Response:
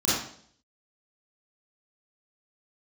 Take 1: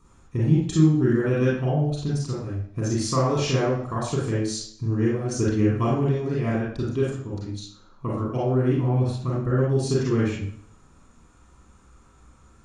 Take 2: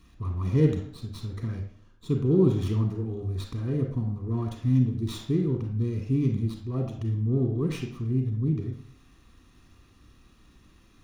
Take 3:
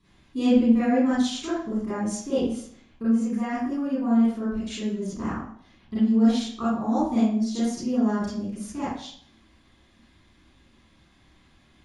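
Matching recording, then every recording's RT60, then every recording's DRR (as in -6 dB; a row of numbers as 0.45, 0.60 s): 3; 0.60, 0.60, 0.60 s; -5.0, 3.5, -11.0 dB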